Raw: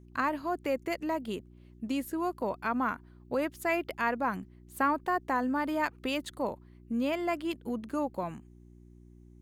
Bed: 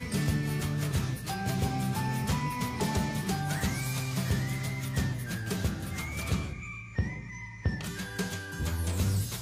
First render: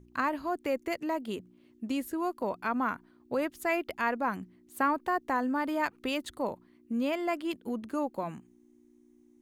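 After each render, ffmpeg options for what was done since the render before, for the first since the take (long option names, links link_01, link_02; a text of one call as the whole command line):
ffmpeg -i in.wav -af "bandreject=frequency=60:width_type=h:width=4,bandreject=frequency=120:width_type=h:width=4,bandreject=frequency=180:width_type=h:width=4" out.wav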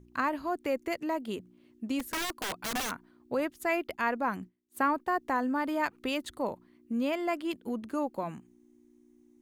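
ffmpeg -i in.wav -filter_complex "[0:a]asplit=3[link_01][link_02][link_03];[link_01]afade=type=out:start_time=1.99:duration=0.02[link_04];[link_02]aeval=exprs='(mod(25.1*val(0)+1,2)-1)/25.1':channel_layout=same,afade=type=in:start_time=1.99:duration=0.02,afade=type=out:start_time=2.9:duration=0.02[link_05];[link_03]afade=type=in:start_time=2.9:duration=0.02[link_06];[link_04][link_05][link_06]amix=inputs=3:normalize=0,asettb=1/sr,asplit=3[link_07][link_08][link_09];[link_07]atrim=end=3.404[link_10];[link_08]atrim=start=3.4:end=5.12,asetpts=PTS-STARTPTS,afade=type=in:duration=0.004:curve=qsin,afade=type=out:start_time=1.716:duration=0.004:curve=qsin,agate=range=-33dB:threshold=-47dB:ratio=3:release=100:detection=peak[link_11];[link_09]atrim=start=5.116[link_12];[link_10][link_11]acrossfade=duration=0.004:curve1=hsin:curve2=qsin[link_13];[link_13][link_12]acrossfade=duration=0.004:curve1=qsin:curve2=hsin" out.wav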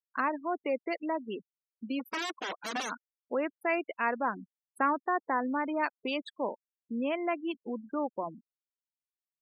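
ffmpeg -i in.wav -af "highpass=240,afftfilt=real='re*gte(hypot(re,im),0.02)':imag='im*gte(hypot(re,im),0.02)':win_size=1024:overlap=0.75" out.wav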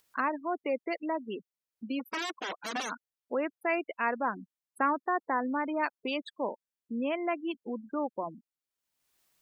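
ffmpeg -i in.wav -af "acompressor=mode=upward:threshold=-52dB:ratio=2.5" out.wav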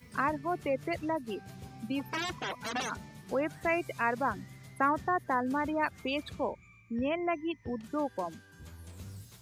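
ffmpeg -i in.wav -i bed.wav -filter_complex "[1:a]volume=-17.5dB[link_01];[0:a][link_01]amix=inputs=2:normalize=0" out.wav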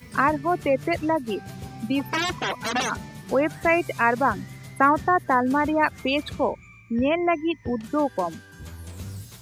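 ffmpeg -i in.wav -af "volume=9.5dB" out.wav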